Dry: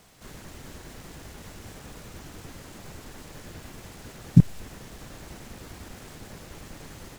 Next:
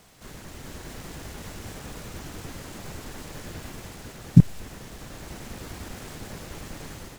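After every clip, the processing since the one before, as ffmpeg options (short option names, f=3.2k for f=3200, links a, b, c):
-af "dynaudnorm=f=460:g=3:m=3.5dB,volume=1dB"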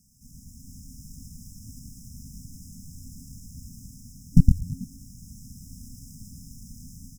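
-filter_complex "[0:a]asplit=8[a][b][c][d][e][f][g][h];[b]adelay=109,afreqshift=-90,volume=-4dB[i];[c]adelay=218,afreqshift=-180,volume=-9.8dB[j];[d]adelay=327,afreqshift=-270,volume=-15.7dB[k];[e]adelay=436,afreqshift=-360,volume=-21.5dB[l];[f]adelay=545,afreqshift=-450,volume=-27.4dB[m];[g]adelay=654,afreqshift=-540,volume=-33.2dB[n];[h]adelay=763,afreqshift=-630,volume=-39.1dB[o];[a][i][j][k][l][m][n][o]amix=inputs=8:normalize=0,aeval=exprs='0.891*(cos(1*acos(clip(val(0)/0.891,-1,1)))-cos(1*PI/2))+0.398*(cos(4*acos(clip(val(0)/0.891,-1,1)))-cos(4*PI/2))':c=same,afftfilt=real='re*(1-between(b*sr/4096,270,5000))':imag='im*(1-between(b*sr/4096,270,5000))':win_size=4096:overlap=0.75,volume=-4.5dB"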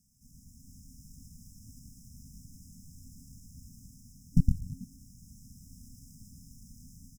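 -af "aecho=1:1:154:0.0891,volume=-8dB"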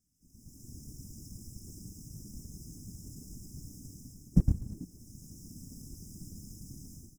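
-af "dynaudnorm=f=290:g=3:m=14dB,afftfilt=real='hypot(re,im)*cos(2*PI*random(0))':imag='hypot(re,im)*sin(2*PI*random(1))':win_size=512:overlap=0.75,volume=-3dB"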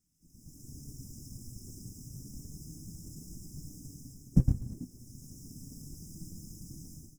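-af "flanger=delay=6.1:depth=1.9:regen=65:speed=0.31:shape=sinusoidal,volume=5dB"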